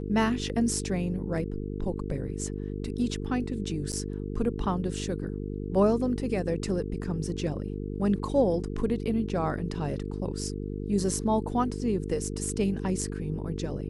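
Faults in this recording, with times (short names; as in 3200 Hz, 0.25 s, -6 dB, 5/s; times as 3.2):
buzz 50 Hz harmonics 9 -34 dBFS
3.92–3.93 gap 8.5 ms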